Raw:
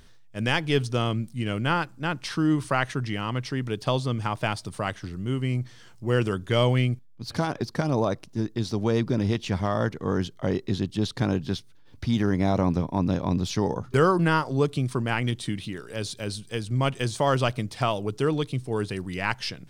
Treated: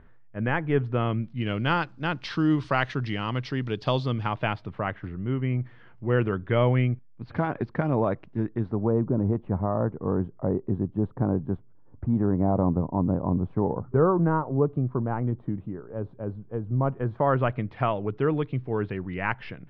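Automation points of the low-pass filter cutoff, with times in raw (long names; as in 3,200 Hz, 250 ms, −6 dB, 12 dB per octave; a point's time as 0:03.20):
low-pass filter 24 dB per octave
0:00.79 1,900 Hz
0:01.72 4,500 Hz
0:03.99 4,500 Hz
0:04.81 2,300 Hz
0:08.42 2,300 Hz
0:08.91 1,100 Hz
0:16.80 1,100 Hz
0:17.61 2,300 Hz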